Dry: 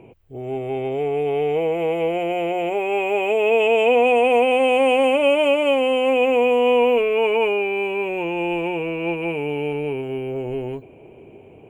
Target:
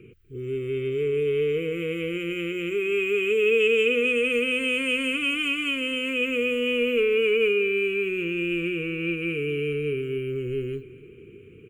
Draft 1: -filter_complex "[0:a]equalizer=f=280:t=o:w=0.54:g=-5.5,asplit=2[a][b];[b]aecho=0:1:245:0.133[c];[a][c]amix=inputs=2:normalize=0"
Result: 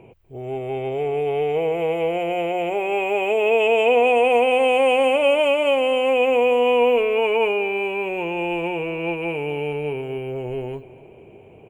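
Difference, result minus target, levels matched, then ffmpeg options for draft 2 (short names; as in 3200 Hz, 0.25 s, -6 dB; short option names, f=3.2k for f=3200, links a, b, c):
1000 Hz band +19.5 dB
-filter_complex "[0:a]asuperstop=centerf=750:order=12:qfactor=0.97,equalizer=f=280:t=o:w=0.54:g=-5.5,asplit=2[a][b];[b]aecho=0:1:245:0.133[c];[a][c]amix=inputs=2:normalize=0"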